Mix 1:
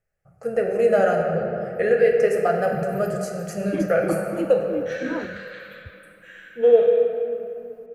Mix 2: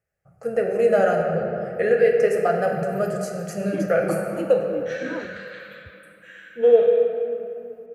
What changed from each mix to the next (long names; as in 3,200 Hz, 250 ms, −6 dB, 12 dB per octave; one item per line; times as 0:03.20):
background −4.0 dB
master: add high-pass filter 52 Hz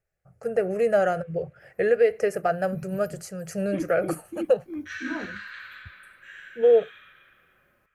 first voice: send off
master: remove high-pass filter 52 Hz